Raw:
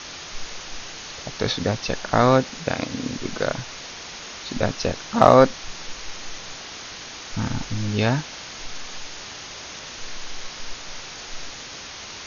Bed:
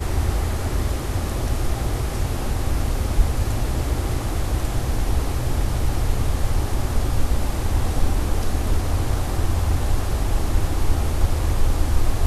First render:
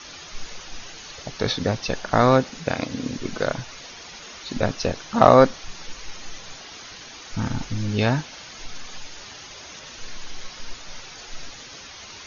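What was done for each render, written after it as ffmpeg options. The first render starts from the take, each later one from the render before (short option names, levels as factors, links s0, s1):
-af "afftdn=nr=8:nf=-38"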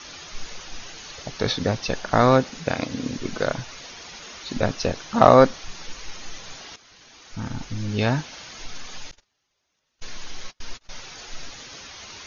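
-filter_complex "[0:a]asettb=1/sr,asplit=3[s0][s1][s2];[s0]atrim=end=9.114[s3];[s1]atrim=start=9.11:end=10.91,asetpts=PTS-STARTPTS,afade=t=in:d=0.004:c=qsin,afade=t=out:st=1.796:d=0.004:c=qsin,agate=range=0.0178:threshold=0.0158:ratio=16:release=100:detection=peak[s4];[s2]atrim=start=10.906[s5];[s3][s4]acrossfade=d=0.004:c1=hsin:c2=qsin[s6];[s6][s5]acrossfade=d=0.004:c1=qsin:c2=hsin,asplit=2[s7][s8];[s7]atrim=end=6.76,asetpts=PTS-STARTPTS,afade=t=out:st=6.756:d=0.004:c=hsin:silence=0.199526[s9];[s8]atrim=start=6.76,asetpts=PTS-STARTPTS,afade=t=in:d=1.54:silence=0.199526[s10];[s9][s10]concat=n=2:v=0:a=1"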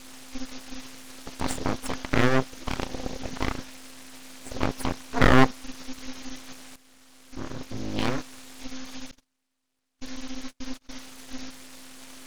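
-af "aeval=exprs='val(0)*sin(2*PI*130*n/s)':c=same,aeval=exprs='abs(val(0))':c=same"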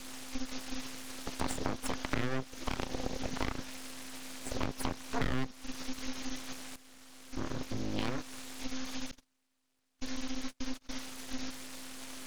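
-filter_complex "[0:a]acrossover=split=310|2200[s0][s1][s2];[s1]alimiter=limit=0.15:level=0:latency=1:release=105[s3];[s0][s3][s2]amix=inputs=3:normalize=0,acompressor=threshold=0.0316:ratio=4"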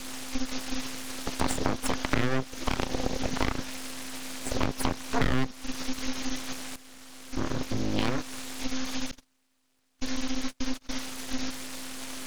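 -af "volume=2.24"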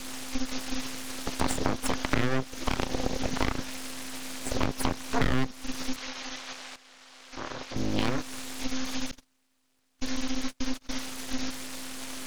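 -filter_complex "[0:a]asettb=1/sr,asplit=3[s0][s1][s2];[s0]atrim=end=5.964[s3];[s1]atrim=start=5.96:end=7.76,asetpts=PTS-STARTPTS,afade=t=in:d=0.004:c=qsin,afade=t=out:st=1.796:d=0.004:c=qsin,acrossover=split=480 6600:gain=0.2 1 0.141[s4][s5][s6];[s4][s5][s6]amix=inputs=3:normalize=0[s7];[s2]atrim=start=7.756[s8];[s3][s7]acrossfade=d=0.004:c1=hsin:c2=qsin[s9];[s9][s8]acrossfade=d=0.004:c1=qsin:c2=hsin"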